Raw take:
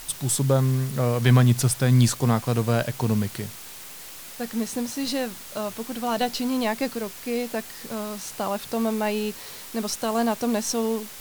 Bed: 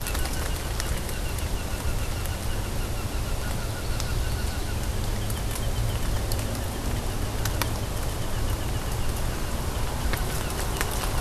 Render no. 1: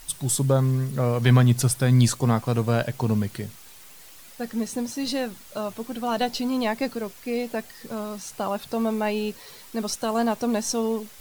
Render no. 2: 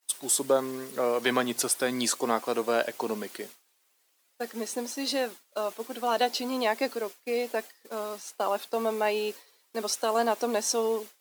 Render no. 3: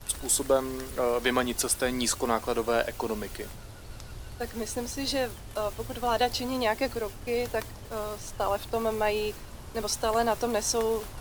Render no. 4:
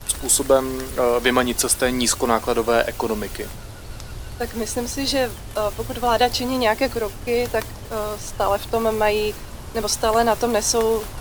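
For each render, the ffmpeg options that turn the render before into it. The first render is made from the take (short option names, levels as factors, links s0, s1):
-af "afftdn=nr=8:nf=-41"
-af "agate=range=0.0224:threshold=0.0251:ratio=3:detection=peak,highpass=f=310:w=0.5412,highpass=f=310:w=1.3066"
-filter_complex "[1:a]volume=0.178[s0];[0:a][s0]amix=inputs=2:normalize=0"
-af "volume=2.51"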